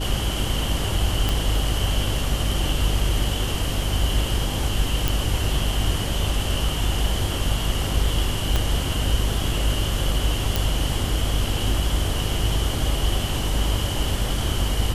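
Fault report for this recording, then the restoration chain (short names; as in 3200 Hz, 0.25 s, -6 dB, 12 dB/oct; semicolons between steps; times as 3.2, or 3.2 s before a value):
hum 50 Hz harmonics 7 -26 dBFS
1.29 pop
5.08 pop
8.56 pop -7 dBFS
10.56 pop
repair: de-click; de-hum 50 Hz, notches 7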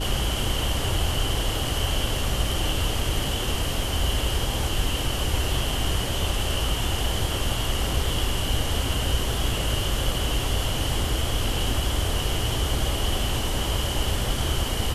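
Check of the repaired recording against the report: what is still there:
8.56 pop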